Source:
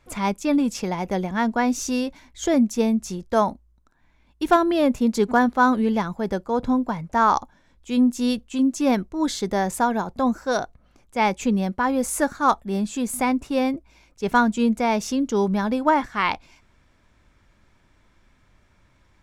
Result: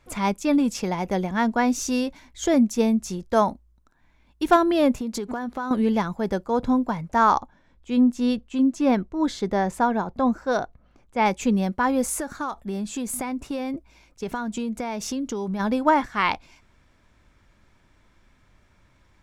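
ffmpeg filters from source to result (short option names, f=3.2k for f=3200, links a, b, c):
-filter_complex "[0:a]asettb=1/sr,asplit=3[a][b][c];[a]atrim=end=4.974[d];[b]atrim=start=4.97:end=5.71,asetpts=PTS-STARTPTS,afade=t=in:d=0.004:c=qsin,afade=t=out:st=0.736:d=0.004:c=qsin,acompressor=threshold=-25dB:ratio=12:attack=3.2:release=140:knee=1:detection=peak[e];[c]atrim=start=5.706[f];[d][e]acrossfade=d=0.004:c1=hsin:c2=qsin[g];[g][f]acrossfade=d=0.004:c1=qsin:c2=hsin,asettb=1/sr,asplit=3[h][i][j];[h]atrim=end=7.344[k];[i]atrim=start=7.34:end=11.26,asetpts=PTS-STARTPTS,afade=t=in:d=0.004:c=qsin,afade=t=out:st=3.916:d=0.004:c=qsin,lowpass=f=2.6k:p=1[l];[j]atrim=start=11.256[m];[k][l]acrossfade=d=0.004:c1=hsin:c2=qsin[n];[n][m]acrossfade=d=0.004:c1=qsin:c2=hsin,asplit=3[o][p][q];[o]afade=t=out:st=12.13:d=0.02[r];[p]acompressor=threshold=-24dB:ratio=16:attack=3.2:release=140:knee=1:detection=peak,afade=t=in:st=12.13:d=0.02,afade=t=out:st=15.59:d=0.02[s];[q]afade=t=in:st=15.59:d=0.02[t];[r][s][t]amix=inputs=3:normalize=0"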